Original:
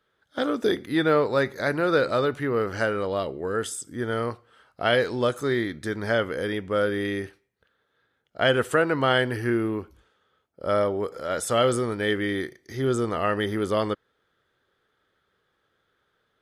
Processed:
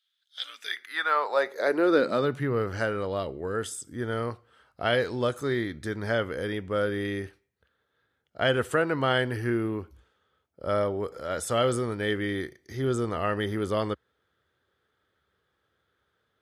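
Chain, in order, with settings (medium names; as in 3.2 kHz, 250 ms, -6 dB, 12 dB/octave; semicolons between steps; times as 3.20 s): high-pass sweep 3.5 kHz -> 66 Hz, 0.37–2.81 s; trim -3.5 dB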